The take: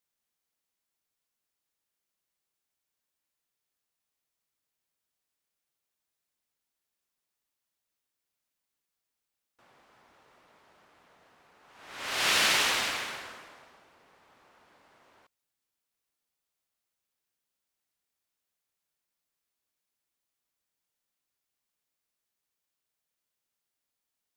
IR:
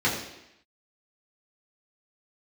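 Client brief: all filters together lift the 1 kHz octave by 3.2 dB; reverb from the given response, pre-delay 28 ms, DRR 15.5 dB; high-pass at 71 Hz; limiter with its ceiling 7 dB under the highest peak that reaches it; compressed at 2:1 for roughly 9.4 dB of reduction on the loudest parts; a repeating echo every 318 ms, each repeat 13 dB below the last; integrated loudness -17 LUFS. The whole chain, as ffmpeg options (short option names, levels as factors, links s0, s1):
-filter_complex "[0:a]highpass=71,equalizer=f=1000:t=o:g=4,acompressor=threshold=0.0126:ratio=2,alimiter=level_in=1.68:limit=0.0631:level=0:latency=1,volume=0.596,aecho=1:1:318|636|954:0.224|0.0493|0.0108,asplit=2[s0][s1];[1:a]atrim=start_sample=2205,adelay=28[s2];[s1][s2]afir=irnorm=-1:irlink=0,volume=0.0335[s3];[s0][s3]amix=inputs=2:normalize=0,volume=12.6"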